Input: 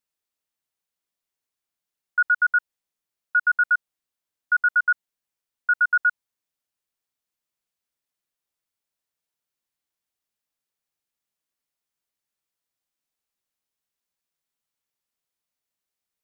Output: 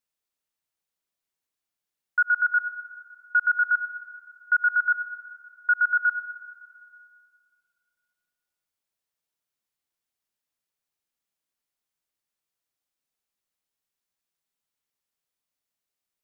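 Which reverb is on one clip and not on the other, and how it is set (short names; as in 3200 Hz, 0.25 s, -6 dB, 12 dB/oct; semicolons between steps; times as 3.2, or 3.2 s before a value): digital reverb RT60 2.2 s, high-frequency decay 0.9×, pre-delay 45 ms, DRR 12.5 dB; gain -1 dB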